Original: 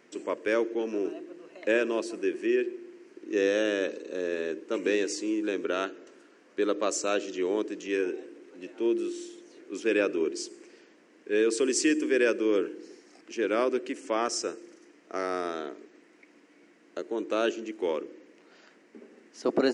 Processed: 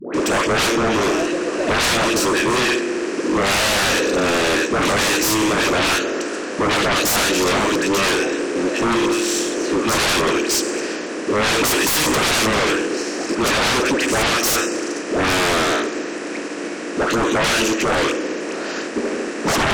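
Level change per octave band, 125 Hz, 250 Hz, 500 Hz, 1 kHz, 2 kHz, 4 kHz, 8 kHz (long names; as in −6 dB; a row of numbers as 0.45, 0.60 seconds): can't be measured, +10.5 dB, +8.0 dB, +17.5 dB, +16.5 dB, +20.5 dB, +17.0 dB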